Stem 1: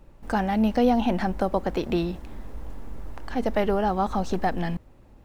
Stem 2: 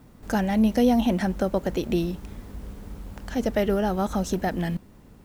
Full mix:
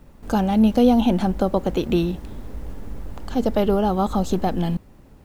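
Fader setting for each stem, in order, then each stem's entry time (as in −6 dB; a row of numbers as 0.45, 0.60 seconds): +1.0, −2.0 decibels; 0.00, 0.00 seconds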